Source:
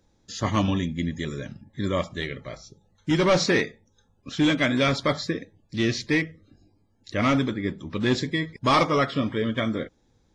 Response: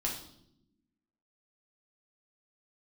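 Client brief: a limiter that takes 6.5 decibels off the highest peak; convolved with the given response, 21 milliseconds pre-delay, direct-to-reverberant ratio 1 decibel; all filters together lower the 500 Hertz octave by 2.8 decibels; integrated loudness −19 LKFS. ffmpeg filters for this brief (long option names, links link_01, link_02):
-filter_complex "[0:a]equalizer=frequency=500:width_type=o:gain=-3.5,alimiter=limit=-18dB:level=0:latency=1,asplit=2[link_01][link_02];[1:a]atrim=start_sample=2205,adelay=21[link_03];[link_02][link_03]afir=irnorm=-1:irlink=0,volume=-4.5dB[link_04];[link_01][link_04]amix=inputs=2:normalize=0,volume=6.5dB"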